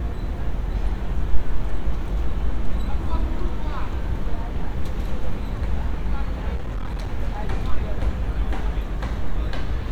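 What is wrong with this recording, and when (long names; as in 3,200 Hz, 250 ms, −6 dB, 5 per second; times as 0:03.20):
0:06.55–0:07.13: clipping −22.5 dBFS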